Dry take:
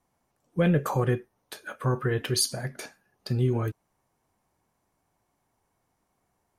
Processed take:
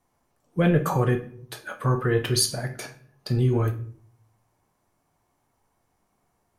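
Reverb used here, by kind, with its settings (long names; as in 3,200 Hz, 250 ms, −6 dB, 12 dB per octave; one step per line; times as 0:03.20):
rectangular room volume 54 cubic metres, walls mixed, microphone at 0.33 metres
level +2 dB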